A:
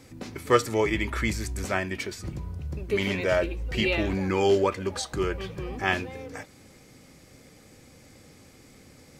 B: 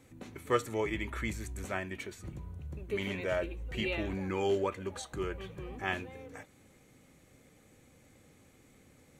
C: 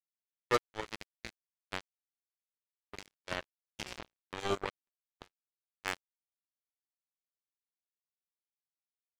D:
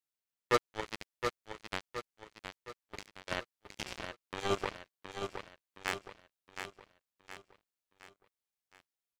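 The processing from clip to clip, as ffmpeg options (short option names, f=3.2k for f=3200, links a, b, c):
-af "equalizer=f=5k:w=4.9:g=-13.5,volume=-8.5dB"
-af "acrusher=bits=3:mix=0:aa=0.5,agate=range=-35dB:threshold=-52dB:ratio=16:detection=peak,volume=-1dB"
-af "aecho=1:1:717|1434|2151|2868|3585:0.447|0.201|0.0905|0.0407|0.0183,volume=1dB"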